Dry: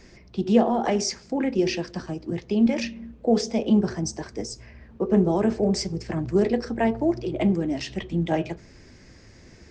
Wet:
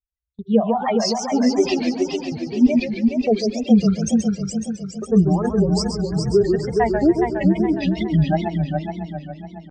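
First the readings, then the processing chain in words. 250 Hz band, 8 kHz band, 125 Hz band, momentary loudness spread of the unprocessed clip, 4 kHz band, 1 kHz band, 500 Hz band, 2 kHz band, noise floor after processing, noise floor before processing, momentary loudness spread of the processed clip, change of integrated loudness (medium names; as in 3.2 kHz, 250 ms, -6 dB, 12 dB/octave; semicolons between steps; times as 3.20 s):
+5.5 dB, +3.0 dB, +7.5 dB, 12 LU, +4.0 dB, +5.0 dB, +4.5 dB, +3.5 dB, -43 dBFS, -50 dBFS, 10 LU, +5.0 dB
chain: expander on every frequency bin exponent 3; gate -49 dBFS, range -18 dB; bass shelf 490 Hz +6 dB; level rider gain up to 5.5 dB; on a send: multi-head delay 138 ms, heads first and third, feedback 61%, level -7 dB; on the sum: wow and flutter 140 cents; in parallel at +0.5 dB: peak limiter -13 dBFS, peak gain reduction 9.5 dB; on the sum: trim -3.5 dB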